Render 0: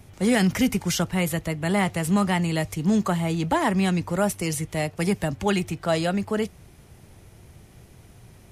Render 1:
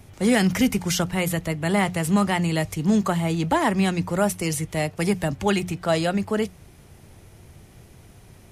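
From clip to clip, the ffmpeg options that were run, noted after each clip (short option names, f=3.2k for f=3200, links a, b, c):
-af "bandreject=f=60:t=h:w=6,bandreject=f=120:t=h:w=6,bandreject=f=180:t=h:w=6,volume=1.5dB"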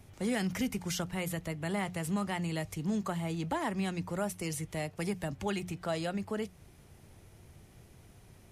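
-af "acompressor=threshold=-29dB:ratio=1.5,volume=-8dB"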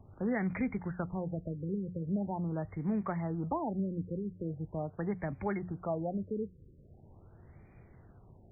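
-af "afftfilt=real='re*lt(b*sr/1024,520*pow(2500/520,0.5+0.5*sin(2*PI*0.42*pts/sr)))':imag='im*lt(b*sr/1024,520*pow(2500/520,0.5+0.5*sin(2*PI*0.42*pts/sr)))':win_size=1024:overlap=0.75"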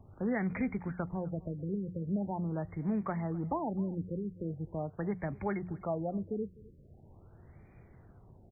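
-af "aecho=1:1:255:0.0794"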